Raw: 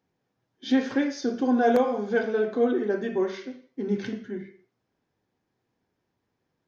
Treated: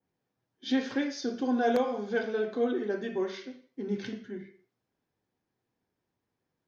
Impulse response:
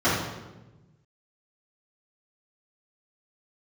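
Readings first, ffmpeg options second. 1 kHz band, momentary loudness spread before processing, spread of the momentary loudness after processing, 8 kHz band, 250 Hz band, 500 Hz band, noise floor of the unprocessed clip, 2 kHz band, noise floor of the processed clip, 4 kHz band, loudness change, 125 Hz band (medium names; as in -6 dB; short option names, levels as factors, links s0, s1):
-5.0 dB, 16 LU, 16 LU, no reading, -5.5 dB, -5.5 dB, -79 dBFS, -4.0 dB, -85 dBFS, -0.5 dB, -5.5 dB, -5.5 dB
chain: -af "adynamicequalizer=threshold=0.00398:dfrequency=4000:dqfactor=0.86:tfrequency=4000:tqfactor=0.86:attack=5:release=100:ratio=0.375:range=3:mode=boostabove:tftype=bell,volume=0.531"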